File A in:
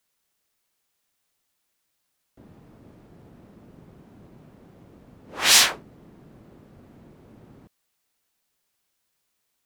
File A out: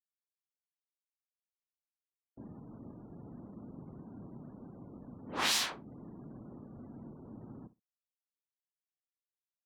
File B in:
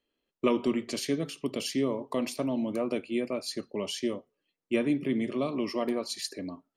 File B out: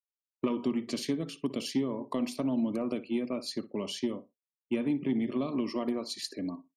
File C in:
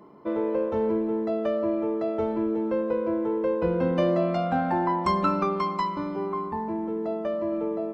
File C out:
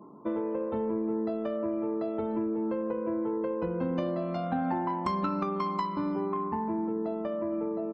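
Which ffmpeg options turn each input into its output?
-filter_complex "[0:a]acompressor=threshold=0.0355:ratio=4,afftfilt=real='re*gte(hypot(re,im),0.00178)':imag='im*gte(hypot(re,im),0.00178)':win_size=1024:overlap=0.75,equalizer=f=125:t=o:w=1:g=4,equalizer=f=250:t=o:w=1:g=8,equalizer=f=1000:t=o:w=1:g=5,equalizer=f=4000:t=o:w=1:g=4,aeval=exprs='0.237*(cos(1*acos(clip(val(0)/0.237,-1,1)))-cos(1*PI/2))+0.0237*(cos(3*acos(clip(val(0)/0.237,-1,1)))-cos(3*PI/2))':c=same,asplit=2[s0][s1];[s1]adelay=61,lowpass=f=2000:p=1,volume=0.15,asplit=2[s2][s3];[s3]adelay=61,lowpass=f=2000:p=1,volume=0.15[s4];[s0][s2][s4]amix=inputs=3:normalize=0,volume=0.794"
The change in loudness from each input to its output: -22.5 LU, -1.5 LU, -5.0 LU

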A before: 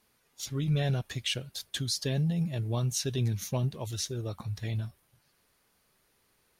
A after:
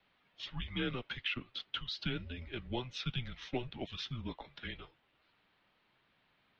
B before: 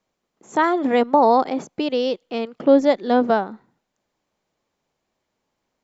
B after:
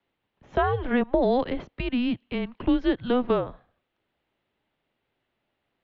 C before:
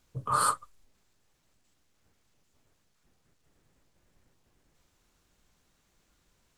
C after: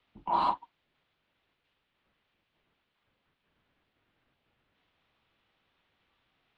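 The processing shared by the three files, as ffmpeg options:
-filter_complex "[0:a]highpass=f=290:t=q:w=0.5412,highpass=f=290:t=q:w=1.307,lowpass=f=3600:t=q:w=0.5176,lowpass=f=3600:t=q:w=0.7071,lowpass=f=3600:t=q:w=1.932,afreqshift=-250,acrossover=split=250|1700[s0][s1][s2];[s0]acompressor=threshold=0.0316:ratio=4[s3];[s1]acompressor=threshold=0.1:ratio=4[s4];[s2]acompressor=threshold=0.00794:ratio=4[s5];[s3][s4][s5]amix=inputs=3:normalize=0,aemphasis=mode=production:type=75fm"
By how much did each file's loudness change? -8.5 LU, -6.5 LU, -2.0 LU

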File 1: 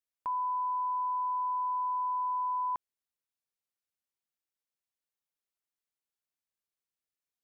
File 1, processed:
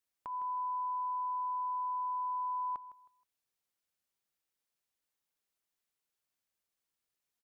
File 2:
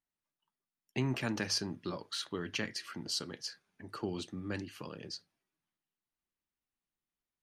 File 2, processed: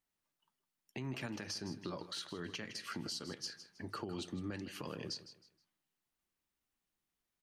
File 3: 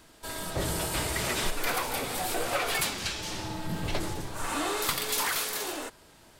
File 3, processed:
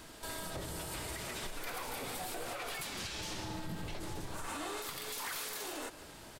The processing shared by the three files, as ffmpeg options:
-af "acompressor=threshold=0.00891:ratio=6,aecho=1:1:158|316|474:0.178|0.0516|0.015,alimiter=level_in=3.76:limit=0.0631:level=0:latency=1:release=85,volume=0.266,volume=1.58"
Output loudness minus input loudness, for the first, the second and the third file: -4.0 LU, -5.5 LU, -10.0 LU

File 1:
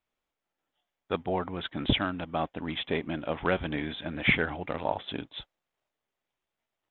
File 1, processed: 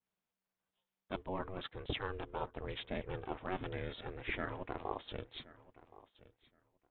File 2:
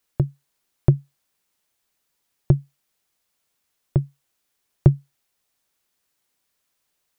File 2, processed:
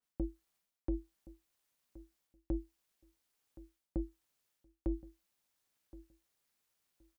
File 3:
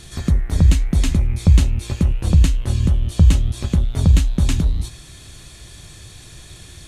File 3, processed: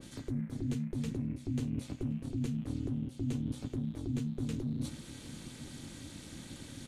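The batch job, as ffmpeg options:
-filter_complex "[0:a]aeval=exprs='val(0)*sin(2*PI*190*n/s)':c=same,areverse,acompressor=threshold=0.0316:ratio=5,areverse,asplit=2[s0][s1];[s1]adelay=1071,lowpass=f=2100:p=1,volume=0.119,asplit=2[s2][s3];[s3]adelay=1071,lowpass=f=2100:p=1,volume=0.18[s4];[s0][s2][s4]amix=inputs=3:normalize=0,adynamicequalizer=threshold=0.00316:dfrequency=2100:dqfactor=0.7:tfrequency=2100:tqfactor=0.7:attack=5:release=100:ratio=0.375:range=2.5:mode=cutabove:tftype=highshelf,volume=0.631"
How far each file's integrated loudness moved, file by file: -12.0 LU, -19.0 LU, -20.5 LU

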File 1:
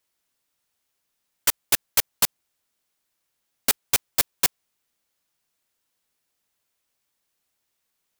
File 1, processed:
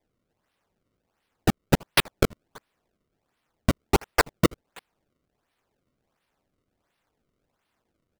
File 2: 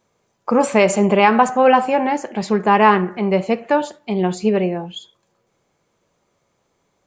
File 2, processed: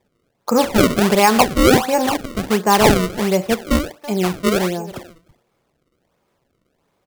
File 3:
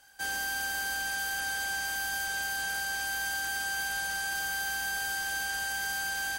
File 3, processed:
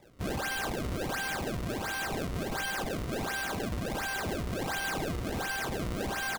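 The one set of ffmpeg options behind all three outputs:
-filter_complex "[0:a]asplit=2[s0][s1];[s1]adelay=330,highpass=300,lowpass=3400,asoftclip=type=hard:threshold=0.335,volume=0.141[s2];[s0][s2]amix=inputs=2:normalize=0,acrusher=samples=30:mix=1:aa=0.000001:lfo=1:lforange=48:lforate=1.4"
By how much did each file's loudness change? -3.0 LU, 0.0 LU, -2.5 LU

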